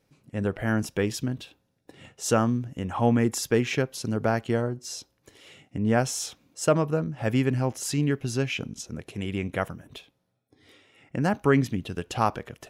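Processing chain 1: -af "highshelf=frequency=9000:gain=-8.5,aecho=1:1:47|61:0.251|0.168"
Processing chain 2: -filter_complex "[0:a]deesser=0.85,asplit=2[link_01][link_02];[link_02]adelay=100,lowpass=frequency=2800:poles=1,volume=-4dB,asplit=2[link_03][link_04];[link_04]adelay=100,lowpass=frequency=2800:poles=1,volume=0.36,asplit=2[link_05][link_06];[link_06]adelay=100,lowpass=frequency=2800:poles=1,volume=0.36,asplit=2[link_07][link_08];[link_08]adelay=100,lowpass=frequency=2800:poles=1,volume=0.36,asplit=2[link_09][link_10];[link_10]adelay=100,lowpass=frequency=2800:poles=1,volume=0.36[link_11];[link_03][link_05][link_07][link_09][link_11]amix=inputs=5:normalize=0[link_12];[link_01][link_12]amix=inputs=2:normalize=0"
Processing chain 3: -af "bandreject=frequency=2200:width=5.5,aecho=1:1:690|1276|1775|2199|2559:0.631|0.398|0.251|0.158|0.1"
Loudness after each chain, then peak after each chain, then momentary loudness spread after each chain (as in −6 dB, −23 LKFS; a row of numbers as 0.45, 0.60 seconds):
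−27.0, −26.0, −26.0 LKFS; −8.5, −8.5, −6.5 dBFS; 13, 14, 9 LU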